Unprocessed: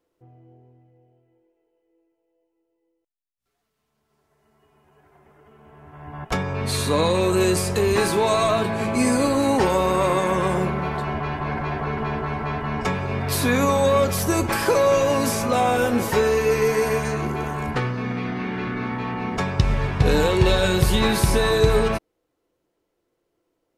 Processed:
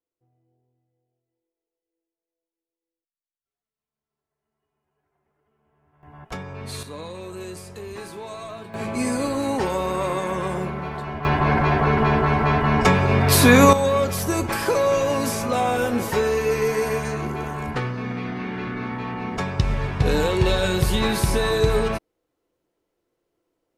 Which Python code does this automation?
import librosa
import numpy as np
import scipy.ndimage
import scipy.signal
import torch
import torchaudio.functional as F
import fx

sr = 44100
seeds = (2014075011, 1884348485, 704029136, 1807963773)

y = fx.gain(x, sr, db=fx.steps((0.0, -19.0), (6.03, -9.0), (6.83, -16.0), (8.74, -4.5), (11.25, 7.5), (13.73, -2.0)))